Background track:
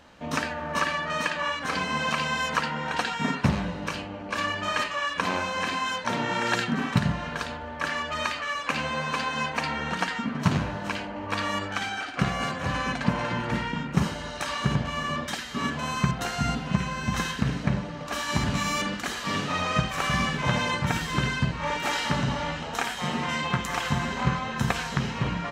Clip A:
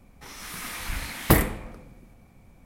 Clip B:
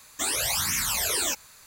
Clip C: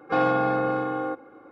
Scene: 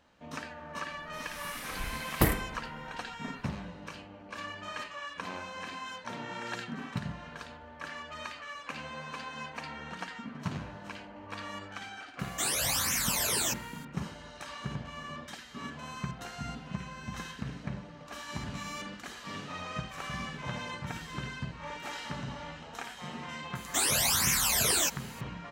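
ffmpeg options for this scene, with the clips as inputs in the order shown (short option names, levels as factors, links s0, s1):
-filter_complex "[2:a]asplit=2[s0][s1];[0:a]volume=0.237[s2];[1:a]atrim=end=2.65,asetpts=PTS-STARTPTS,volume=0.473,afade=t=in:d=0.004:c=hsin,afade=t=out:st=2.646:d=0.004:c=hsin,adelay=910[s3];[s0]atrim=end=1.66,asetpts=PTS-STARTPTS,volume=0.668,afade=t=in:d=0.004:c=hsin,afade=t=out:st=1.656:d=0.004:c=hsin,adelay=12190[s4];[s1]atrim=end=1.66,asetpts=PTS-STARTPTS,volume=0.944,afade=t=in:d=0.004:c=hsin,afade=t=out:st=1.656:d=0.004:c=hsin,adelay=23550[s5];[s2][s3][s4][s5]amix=inputs=4:normalize=0"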